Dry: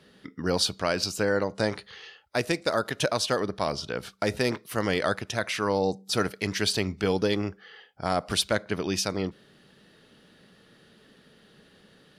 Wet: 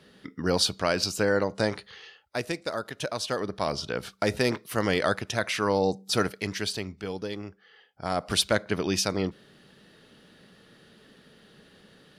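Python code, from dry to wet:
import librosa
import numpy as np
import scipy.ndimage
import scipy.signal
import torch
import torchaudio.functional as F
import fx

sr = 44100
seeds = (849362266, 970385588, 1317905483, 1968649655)

y = fx.gain(x, sr, db=fx.line((1.52, 1.0), (2.96, -7.0), (3.8, 1.0), (6.19, 1.0), (7.03, -9.0), (7.63, -9.0), (8.4, 1.5)))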